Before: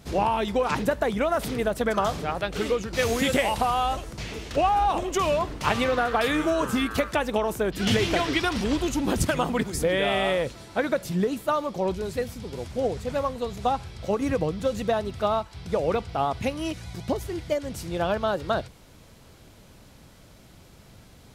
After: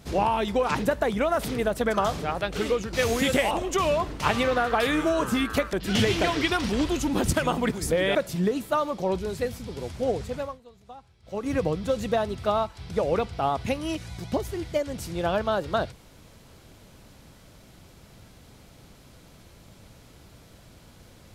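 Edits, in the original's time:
3.51–4.92 s: delete
7.14–7.65 s: delete
10.07–10.91 s: delete
13.00–14.34 s: dip -20.5 dB, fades 0.36 s

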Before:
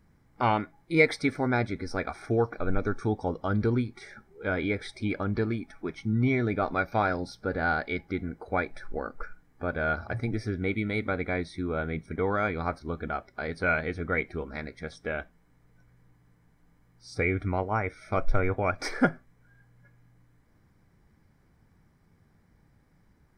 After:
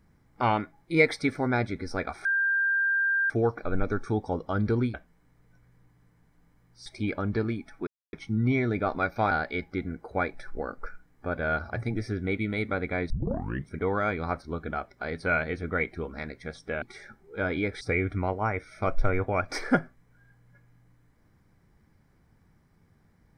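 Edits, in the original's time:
2.25 s: add tone 1.59 kHz -22 dBFS 1.05 s
3.89–4.88 s: swap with 15.19–17.11 s
5.89 s: insert silence 0.26 s
7.07–7.68 s: delete
11.47 s: tape start 0.58 s

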